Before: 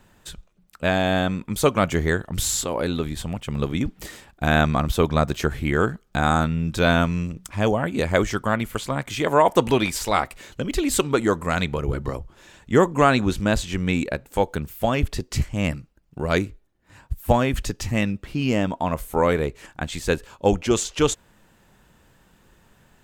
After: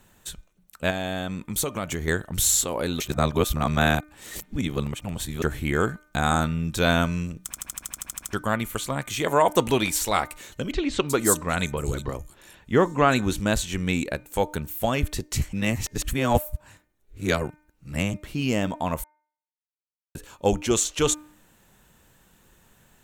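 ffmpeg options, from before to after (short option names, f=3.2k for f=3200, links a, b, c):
-filter_complex "[0:a]asettb=1/sr,asplit=3[a][b][c];[a]atrim=end=0.904[d];[b]atrim=start=0.9:end=2.08,asetpts=PTS-STARTPTS,afade=t=in:d=0.004:c=qsin,afade=t=out:st=1.176:d=0.004:c=qsin,acompressor=threshold=-23dB:ratio=3:attack=3.2:release=140:knee=1:detection=peak[e];[c]atrim=start=2.076[f];[d][e]acrossfade=d=0.004:c1=hsin:c2=qsin[g];[g][f]acrossfade=d=0.004:c1=qsin:c2=hsin,asettb=1/sr,asplit=3[h][i][j];[h]atrim=end=10.724[k];[i]atrim=start=10.72:end=13.18,asetpts=PTS-STARTPTS,afade=t=in:d=0.004:c=qsin,afade=t=out:st=2.456:d=0.004:c=qsin,acrossover=split=4800[l][m];[m]adelay=360[n];[l][n]amix=inputs=2:normalize=0,atrim=end_sample=108486[o];[j]atrim=start=13.176[p];[k][o]acrossfade=d=0.004:c1=hsin:c2=qsin[q];[q][p]acrossfade=d=0.004:c1=qsin:c2=hsin,asplit=18[r][s][t][u][v][w][x][y][z][aa][ab][ac][ad][ae][af][ag][ah][ai];[r]atrim=end=3.002[aj];[s]atrim=start=2.998:end=5.422,asetpts=PTS-STARTPTS,areverse[ak];[t]atrim=start=5.418:end=7.532[al];[u]atrim=start=7.448:end=7.532[am];[v]atrim=start=7.448:end=7.532[an];[w]atrim=start=7.448:end=7.532[ao];[x]atrim=start=7.448:end=7.532[ap];[y]atrim=start=7.448:end=7.532[aq];[z]atrim=start=7.448:end=7.532[ar];[aa]atrim=start=7.448:end=7.532[as];[ab]atrim=start=7.448:end=7.532[at];[ac]atrim=start=7.448:end=7.532[au];[ad]atrim=start=7.448:end=7.532[av];[ae]atrim=start=8.328:end=15.532[aw];[af]atrim=start=15.528:end=18.142,asetpts=PTS-STARTPTS,areverse[ax];[ag]atrim=start=18.138:end=19.04,asetpts=PTS-STARTPTS,afade=t=out:st=0.898:d=0.004:c=hsin[ay];[ah]atrim=start=19.04:end=20.15,asetpts=PTS-STARTPTS,volume=0[az];[ai]atrim=start=20.15,asetpts=PTS-STARTPTS,afade=t=in:d=0.004:c=hsin[ba];[aj][ak]acrossfade=d=0.004:c1=hsin:c2=hsin[bb];[bb][al]acrossfade=d=0.004:c1=hsin:c2=hsin[bc];[bc][am]acrossfade=d=0.004:c1=hsin:c2=hsin[bd];[bd][an]acrossfade=d=0.004:c1=hsin:c2=hsin[be];[be][ao]acrossfade=d=0.004:c1=hsin:c2=hsin[bf];[bf][ap]acrossfade=d=0.004:c1=hsin:c2=hsin[bg];[bg][aq]acrossfade=d=0.004:c1=hsin:c2=hsin[bh];[bh][ar]acrossfade=d=0.004:c1=hsin:c2=hsin[bi];[bi][as]acrossfade=d=0.004:c1=hsin:c2=hsin[bj];[bj][at]acrossfade=d=0.004:c1=hsin:c2=hsin[bk];[bk][au]acrossfade=d=0.004:c1=hsin:c2=hsin[bl];[bl][av]acrossfade=d=0.004:c1=hsin:c2=hsin[bm];[bm][aw]acrossfade=d=0.004:c1=hsin:c2=hsin[bn];[bn][ax]acrossfade=d=0.004:c1=hsin:c2=hsin[bo];[ay][az][ba]concat=n=3:v=0:a=1[bp];[bo][bp]acrossfade=d=0.004:c1=hsin:c2=hsin,aemphasis=mode=production:type=cd,bandreject=f=4.9k:w=11,bandreject=f=302.5:t=h:w=4,bandreject=f=605:t=h:w=4,bandreject=f=907.5:t=h:w=4,bandreject=f=1.21k:t=h:w=4,bandreject=f=1.5125k:t=h:w=4,bandreject=f=1.815k:t=h:w=4,bandreject=f=2.1175k:t=h:w=4,bandreject=f=2.42k:t=h:w=4,volume=-2.5dB"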